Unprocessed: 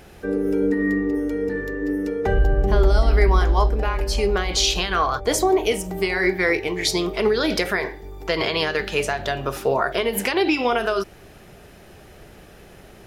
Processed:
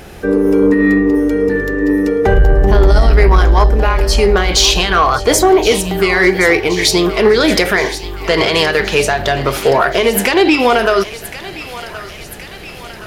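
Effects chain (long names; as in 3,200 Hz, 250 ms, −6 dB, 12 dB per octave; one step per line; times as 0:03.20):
in parallel at −3 dB: brickwall limiter −12 dBFS, peak gain reduction 7.5 dB
on the sum: soft clipping −8 dBFS, distortion −18 dB
feedback echo with a high-pass in the loop 1,072 ms, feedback 67%, high-pass 930 Hz, level −13 dB
level +6.5 dB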